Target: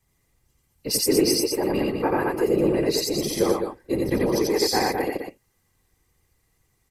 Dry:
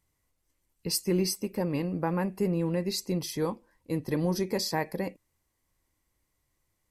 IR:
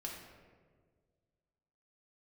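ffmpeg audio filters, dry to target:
-af "aecho=1:1:2.5:0.96,afftfilt=real='hypot(re,im)*cos(2*PI*random(0))':imag='hypot(re,im)*sin(2*PI*random(1))':win_size=512:overlap=0.75,aecho=1:1:87.46|207:0.891|0.501,volume=8.5dB"

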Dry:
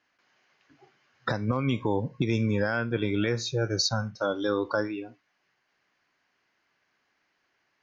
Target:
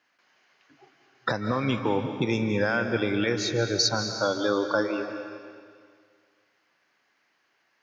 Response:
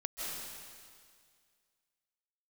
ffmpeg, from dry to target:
-filter_complex "[0:a]highpass=82,lowshelf=f=200:g=-7,asplit=2[a][b];[1:a]atrim=start_sample=2205[c];[b][c]afir=irnorm=-1:irlink=0,volume=-5dB[d];[a][d]amix=inputs=2:normalize=0"

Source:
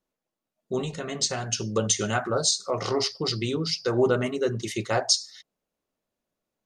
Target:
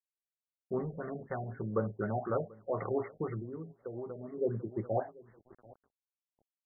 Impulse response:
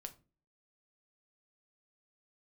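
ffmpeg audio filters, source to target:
-filter_complex "[0:a]asplit=2[a][b];[b]adelay=737,lowpass=f=1.4k:p=1,volume=-22.5dB,asplit=2[c][d];[d]adelay=737,lowpass=f=1.4k:p=1,volume=0.35[e];[a][c][e]amix=inputs=3:normalize=0,aeval=exprs='val(0)*gte(abs(val(0)),0.00447)':c=same,asplit=3[f][g][h];[f]afade=t=out:st=3.4:d=0.02[i];[g]acompressor=threshold=-32dB:ratio=12,afade=t=in:st=3.4:d=0.02,afade=t=out:st=4.37:d=0.02[j];[h]afade=t=in:st=4.37:d=0.02[k];[i][j][k]amix=inputs=3:normalize=0,afftfilt=real='re*lt(b*sr/1024,760*pow(2200/760,0.5+0.5*sin(2*PI*4*pts/sr)))':imag='im*lt(b*sr/1024,760*pow(2200/760,0.5+0.5*sin(2*PI*4*pts/sr)))':win_size=1024:overlap=0.75,volume=-6dB"

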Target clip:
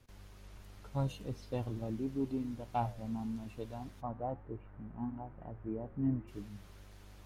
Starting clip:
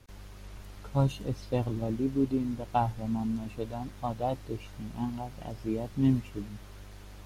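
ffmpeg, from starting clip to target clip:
-filter_complex "[0:a]asoftclip=type=tanh:threshold=-16dB,asplit=3[a][b][c];[a]afade=t=out:st=4:d=0.02[d];[b]lowpass=f=1.7k:w=0.5412,lowpass=f=1.7k:w=1.3066,afade=t=in:st=4:d=0.02,afade=t=out:st=6.27:d=0.02[e];[c]afade=t=in:st=6.27:d=0.02[f];[d][e][f]amix=inputs=3:normalize=0,flanger=delay=7.6:depth=5.4:regen=89:speed=1.1:shape=triangular,volume=-2.5dB"

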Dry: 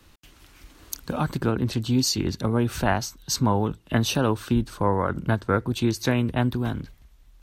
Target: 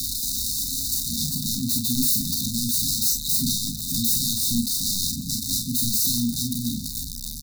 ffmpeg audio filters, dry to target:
-filter_complex "[0:a]aeval=exprs='val(0)+0.5*0.0668*sgn(val(0))':c=same,lowshelf=f=470:g=-10,acrossover=split=180|1300[a][b][c];[a]acompressor=threshold=-44dB:ratio=6[d];[d][b][c]amix=inputs=3:normalize=0,aeval=exprs='(mod(12.6*val(0)+1,2)-1)/12.6':c=same,asplit=2[e][f];[f]aecho=0:1:34|47:0.562|0.531[g];[e][g]amix=inputs=2:normalize=0,afftfilt=real='re*(1-between(b*sr/4096,280,3600))':imag='im*(1-between(b*sr/4096,280,3600))':win_size=4096:overlap=0.75,volume=5.5dB"

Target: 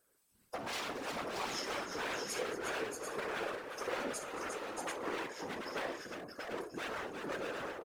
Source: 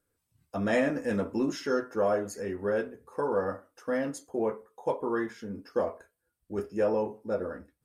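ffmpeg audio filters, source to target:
-filter_complex "[0:a]aeval=exprs='0.0355*(abs(mod(val(0)/0.0355+3,4)-2)-1)':c=same,acompressor=threshold=-43dB:ratio=6,asplit=2[a][b];[b]aecho=0:1:54|223|354|630|738:0.299|0.168|0.447|0.596|0.501[c];[a][c]amix=inputs=2:normalize=0,afftfilt=real='hypot(re,im)*cos(2*PI*random(0))':imag='hypot(re,im)*sin(2*PI*random(1))':win_size=512:overlap=0.75,bass=f=250:g=-13,treble=f=4k:g=3,volume=10.5dB"

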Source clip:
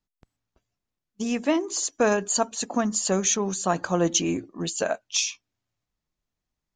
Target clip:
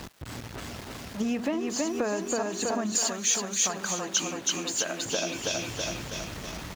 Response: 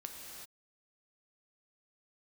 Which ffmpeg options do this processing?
-filter_complex "[0:a]aeval=exprs='val(0)+0.5*0.0237*sgn(val(0))':c=same,highpass=54,highshelf=f=5.6k:g=-11,aecho=1:1:324|648|972|1296|1620|1944|2268:0.708|0.375|0.199|0.105|0.0559|0.0296|0.0157,acompressor=threshold=-28dB:ratio=10,asettb=1/sr,asplit=3[a][b][c];[a]atrim=end=2.954[d];[b]atrim=start=2.95:end=5.05,asetpts=PTS-STARTPTS,afade=t=in:d=0.004:c=qsin,afade=t=out:st=2.096:d=0.004:c=qsin,tiltshelf=f=1.3k:g=-8[e];[c]atrim=start=5.046[f];[d][e]acrossfade=d=0.004:c1=hsin:c2=qsin[g];[g][f]acrossfade=d=0.004:c1=qsin:c2=hsin,volume=2.5dB"

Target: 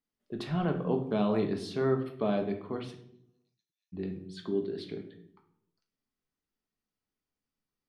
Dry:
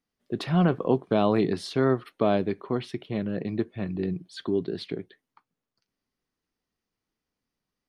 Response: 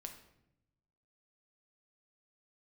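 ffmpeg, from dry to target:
-filter_complex "[0:a]asplit=3[a][b][c];[a]afade=t=out:st=2.93:d=0.02[d];[b]asuperpass=centerf=6000:order=4:qfactor=5,afade=t=in:st=2.93:d=0.02,afade=t=out:st=3.92:d=0.02[e];[c]afade=t=in:st=3.92:d=0.02[f];[d][e][f]amix=inputs=3:normalize=0[g];[1:a]atrim=start_sample=2205,asetrate=57330,aresample=44100[h];[g][h]afir=irnorm=-1:irlink=0"

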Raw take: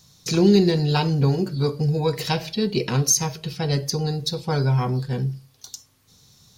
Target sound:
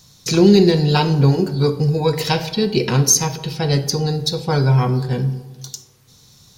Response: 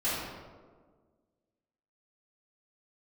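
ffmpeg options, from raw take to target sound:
-filter_complex "[0:a]asplit=2[a][b];[1:a]atrim=start_sample=2205,asetrate=57330,aresample=44100[c];[b][c]afir=irnorm=-1:irlink=0,volume=-18dB[d];[a][d]amix=inputs=2:normalize=0,volume=4.5dB"

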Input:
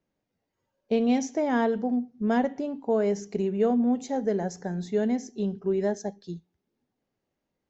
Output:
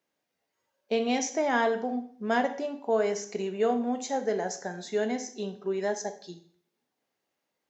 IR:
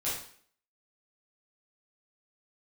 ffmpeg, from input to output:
-filter_complex "[0:a]highpass=f=960:p=1,asplit=2[a][b];[1:a]atrim=start_sample=2205[c];[b][c]afir=irnorm=-1:irlink=0,volume=-12dB[d];[a][d]amix=inputs=2:normalize=0,volume=4dB"

